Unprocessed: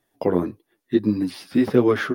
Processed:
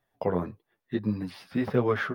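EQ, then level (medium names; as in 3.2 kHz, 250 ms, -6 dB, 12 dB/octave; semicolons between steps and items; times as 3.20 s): peaking EQ 310 Hz -13 dB 0.85 oct; peaking EQ 9.5 kHz -12.5 dB 2.5 oct; -1.0 dB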